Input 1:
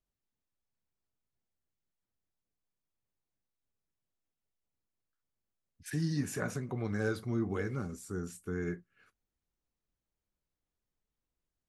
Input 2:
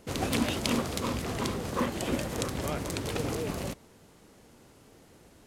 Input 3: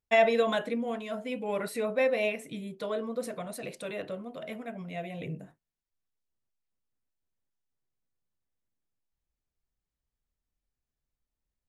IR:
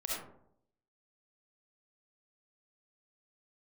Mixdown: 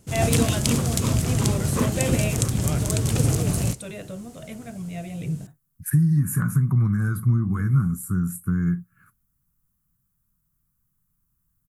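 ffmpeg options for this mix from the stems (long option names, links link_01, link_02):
-filter_complex "[0:a]firequalizer=gain_entry='entry(120,0);entry(170,7);entry(430,-12);entry(660,-14);entry(1100,10);entry(2800,-14);entry(5800,-16);entry(12000,10)':delay=0.05:min_phase=1,acompressor=threshold=-32dB:ratio=10,volume=3dB[link_01];[1:a]volume=0.5dB[link_02];[2:a]volume=-3dB[link_03];[link_01][link_02][link_03]amix=inputs=3:normalize=0,equalizer=frequency=125:width_type=o:width=1:gain=10,equalizer=frequency=250:width_type=o:width=1:gain=-4,equalizer=frequency=500:width_type=o:width=1:gain=-7,equalizer=frequency=1000:width_type=o:width=1:gain=-7,equalizer=frequency=2000:width_type=o:width=1:gain=-6,equalizer=frequency=4000:width_type=o:width=1:gain=-5,equalizer=frequency=8000:width_type=o:width=1:gain=6,dynaudnorm=framelen=110:gausssize=3:maxgain=9dB"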